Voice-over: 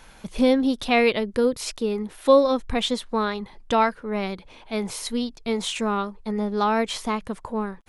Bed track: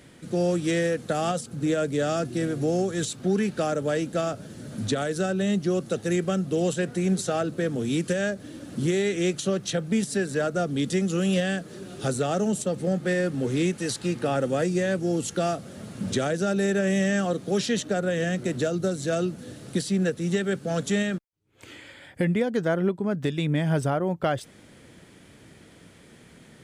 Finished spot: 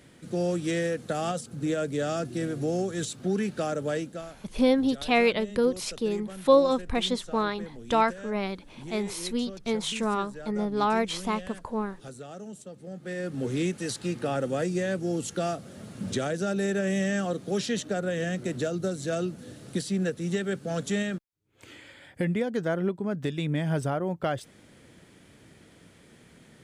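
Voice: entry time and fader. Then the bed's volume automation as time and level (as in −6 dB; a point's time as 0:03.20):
4.20 s, −3.0 dB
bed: 0:03.97 −3.5 dB
0:04.32 −16.5 dB
0:12.85 −16.5 dB
0:13.41 −3.5 dB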